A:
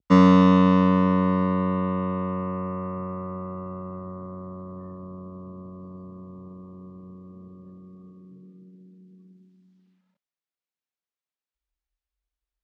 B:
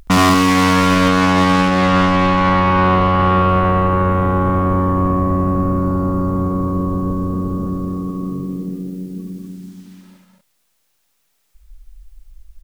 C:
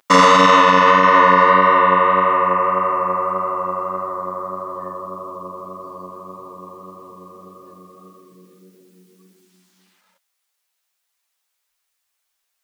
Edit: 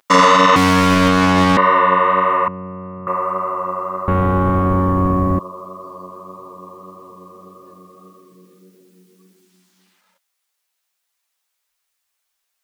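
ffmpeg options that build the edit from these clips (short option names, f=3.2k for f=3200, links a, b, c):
-filter_complex "[1:a]asplit=2[a][b];[2:a]asplit=4[c][d][e][f];[c]atrim=end=0.562[g];[a]atrim=start=0.558:end=1.572[h];[d]atrim=start=1.568:end=2.482[i];[0:a]atrim=start=2.478:end=3.072[j];[e]atrim=start=3.068:end=4.082[k];[b]atrim=start=4.078:end=5.392[l];[f]atrim=start=5.388[m];[g][h]acrossfade=d=0.004:c1=hsin:c2=hsin[n];[n][i]acrossfade=d=0.004:c1=hsin:c2=hsin[o];[o][j]acrossfade=d=0.004:c1=hsin:c2=hsin[p];[p][k]acrossfade=d=0.004:c1=hsin:c2=hsin[q];[q][l]acrossfade=d=0.004:c1=hsin:c2=hsin[r];[r][m]acrossfade=d=0.004:c1=hsin:c2=hsin"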